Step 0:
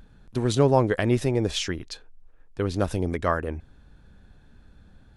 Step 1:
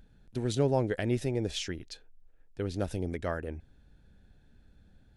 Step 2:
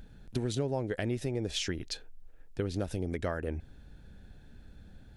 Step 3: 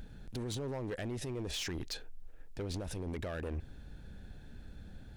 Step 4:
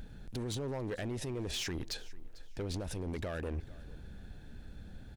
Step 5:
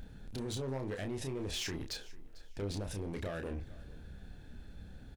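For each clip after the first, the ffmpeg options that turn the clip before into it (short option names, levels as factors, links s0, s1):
-af "equalizer=f=1100:w=2.9:g=-10,volume=0.447"
-af "acompressor=threshold=0.0141:ratio=5,volume=2.37"
-af "alimiter=level_in=2:limit=0.0631:level=0:latency=1:release=26,volume=0.501,asoftclip=type=hard:threshold=0.015,volume=1.33"
-af "aecho=1:1:447|894:0.0944|0.0245,volume=1.12"
-filter_complex "[0:a]asplit=2[s0][s1];[s1]adelay=30,volume=0.531[s2];[s0][s2]amix=inputs=2:normalize=0,volume=0.794"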